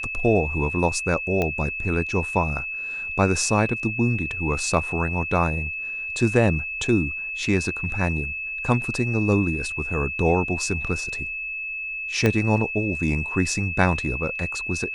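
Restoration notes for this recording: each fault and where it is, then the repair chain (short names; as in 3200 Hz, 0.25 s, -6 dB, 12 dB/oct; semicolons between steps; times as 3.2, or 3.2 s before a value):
tone 2600 Hz -28 dBFS
1.42 pop -11 dBFS
12.26 pop -7 dBFS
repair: de-click; notch 2600 Hz, Q 30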